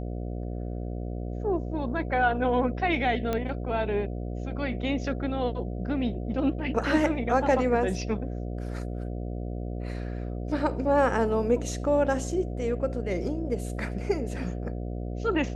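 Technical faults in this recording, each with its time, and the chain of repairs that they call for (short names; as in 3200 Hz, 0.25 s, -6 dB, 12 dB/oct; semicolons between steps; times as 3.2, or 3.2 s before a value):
buzz 60 Hz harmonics 12 -33 dBFS
3.33 pop -15 dBFS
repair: de-click; de-hum 60 Hz, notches 12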